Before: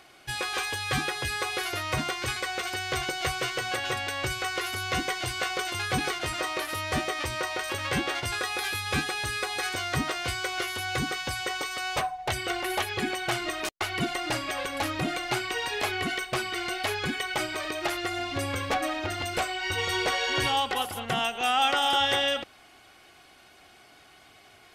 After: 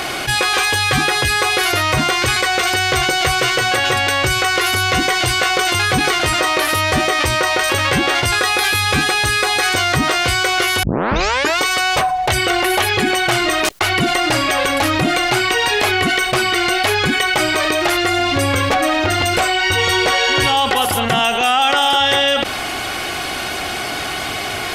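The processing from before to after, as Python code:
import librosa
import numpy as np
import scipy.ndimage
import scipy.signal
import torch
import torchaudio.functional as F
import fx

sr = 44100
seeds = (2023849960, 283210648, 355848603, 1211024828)

y = fx.edit(x, sr, fx.tape_start(start_s=10.83, length_s=0.78), tone=tone)
y = fx.env_flatten(y, sr, amount_pct=70)
y = y * 10.0 ** (8.0 / 20.0)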